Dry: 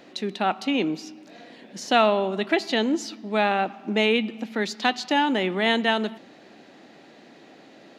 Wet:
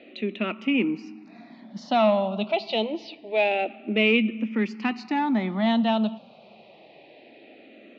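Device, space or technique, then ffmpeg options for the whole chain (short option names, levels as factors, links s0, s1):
barber-pole phaser into a guitar amplifier: -filter_complex "[0:a]asplit=2[s0][s1];[s1]afreqshift=-0.26[s2];[s0][s2]amix=inputs=2:normalize=1,asoftclip=type=tanh:threshold=0.168,highpass=89,equalizer=f=220:t=q:w=4:g=8,equalizer=f=620:t=q:w=4:g=5,equalizer=f=1600:t=q:w=4:g=-9,equalizer=f=2500:t=q:w=4:g=8,lowpass=f=4100:w=0.5412,lowpass=f=4100:w=1.3066"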